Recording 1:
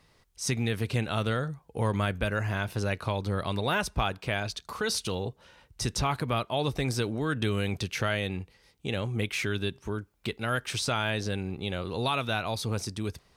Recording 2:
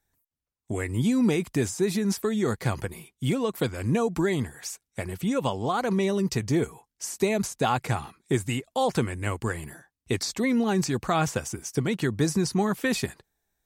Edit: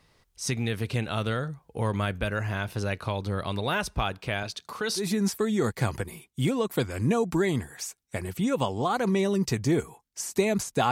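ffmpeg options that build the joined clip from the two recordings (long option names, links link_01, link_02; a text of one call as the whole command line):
ffmpeg -i cue0.wav -i cue1.wav -filter_complex "[0:a]asettb=1/sr,asplit=3[link_01][link_02][link_03];[link_01]atrim=end=4.434[link_04];[link_02]atrim=start=4.43:end=5.07,asetpts=PTS-STARTPTS,afade=type=in:duration=0.004:curve=qsin,afade=type=out:start_time=0.636:duration=0.004:curve=qsin,highpass=130[link_05];[link_03]atrim=start=5.066[link_06];[link_04][link_05]acrossfade=duration=0.004:curve1=hsin:curve2=qsin[link_07];[link_07][link_06]acrossfade=duration=0.004:curve1=qsin:curve2=hsin,apad=whole_dur=10.91,atrim=end=10.91,atrim=end=5.07,asetpts=PTS-STARTPTS[link_08];[1:a]atrim=start=1.79:end=7.75,asetpts=PTS-STARTPTS[link_09];[link_08][link_09]acrossfade=duration=0.12:curve1=tri:curve2=tri" out.wav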